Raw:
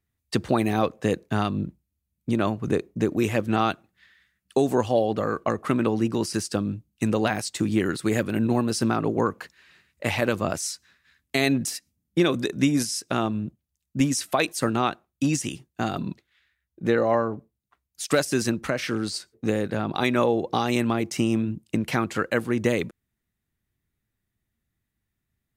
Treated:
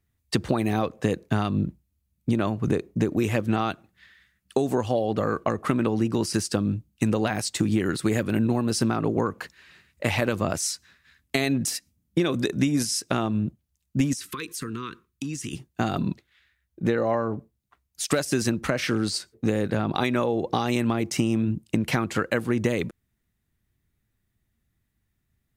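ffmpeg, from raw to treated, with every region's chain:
-filter_complex "[0:a]asettb=1/sr,asplit=3[s0][s1][s2];[s0]atrim=end=14.134[s3];[s1]atrim=start=14.13:end=15.53,asetpts=PTS-STARTPTS,afade=t=in:d=0.004:c=qsin,afade=t=out:st=1.396:d=0.004:c=qsin,asuperstop=centerf=690:order=12:qfactor=1.4,acompressor=threshold=0.02:ratio=5:attack=3.2:release=140:knee=1:detection=peak[s4];[s2]atrim=start=15.526[s5];[s3][s4]acrossfade=d=0.004:c1=hsin:c2=qsin[s6];[s6][s5]acrossfade=d=0.004:c1=qsin:c2=hsin,acompressor=threshold=0.0708:ratio=6,lowshelf=f=150:g=4.5,volume=1.41"

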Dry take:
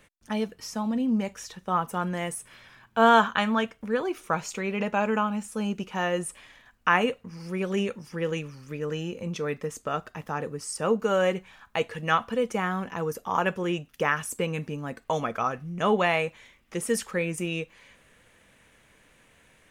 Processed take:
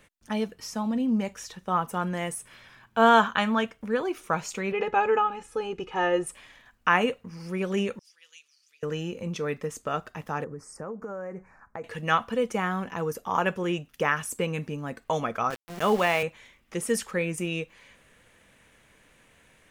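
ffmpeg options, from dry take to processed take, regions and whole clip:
-filter_complex "[0:a]asettb=1/sr,asplit=3[s0][s1][s2];[s0]atrim=end=4.724[s3];[s1]atrim=start=4.72:end=6.27,asetpts=PTS-STARTPTS,afade=t=in:d=0.004:c=qsin,afade=t=out:st=1.546:d=0.004:c=qsin,aemphasis=mode=reproduction:type=75fm,aecho=1:1:2.4:0.91,atrim=end_sample=68355[s4];[s2]atrim=start=6.266[s5];[s3][s4]acrossfade=d=0.004:c1=hsin:c2=qsin[s6];[s6][s5]acrossfade=d=0.004:c1=qsin:c2=hsin,asettb=1/sr,asplit=3[s7][s8][s9];[s7]atrim=end=7.994[s10];[s8]atrim=start=7.99:end=8.83,asetpts=PTS-STARTPTS,afade=t=in:d=0.004:c=qsin,afade=t=out:st=0.836:d=0.004:c=qsin,bandpass=f=4100:t=q:w=1.5,aderivative[s11];[s9]atrim=start=8.826[s12];[s10][s11]acrossfade=d=0.004:c1=hsin:c2=qsin[s13];[s13][s12]acrossfade=d=0.004:c1=qsin:c2=hsin,asettb=1/sr,asplit=3[s14][s15][s16];[s14]atrim=end=10.444[s17];[s15]atrim=start=10.44:end=11.84,asetpts=PTS-STARTPTS,afade=t=in:d=0.004:c=qsin,afade=t=out:st=1.396:d=0.004:c=qsin,asuperstop=centerf=3300:order=4:qfactor=0.91,aemphasis=mode=reproduction:type=75kf,acompressor=threshold=0.0224:ratio=6:attack=3.2:release=140:knee=1:detection=peak[s18];[s16]atrim=start=11.836[s19];[s17][s18]acrossfade=d=0.004:c1=hsin:c2=qsin[s20];[s20][s19]acrossfade=d=0.004:c1=qsin:c2=hsin,asettb=1/sr,asplit=3[s21][s22][s23];[s21]atrim=end=15.504[s24];[s22]atrim=start=15.5:end=16.23,asetpts=PTS-STARTPTS,afade=t=in:d=0.004:c=qsin,afade=t=out:st=0.726:d=0.004:c=qsin,highpass=150,aeval=exprs='val(0)*gte(abs(val(0)),0.0211)':c=same[s25];[s23]atrim=start=16.226[s26];[s24][s25]acrossfade=d=0.004:c1=hsin:c2=qsin[s27];[s27][s26]acrossfade=d=0.004:c1=qsin:c2=hsin"

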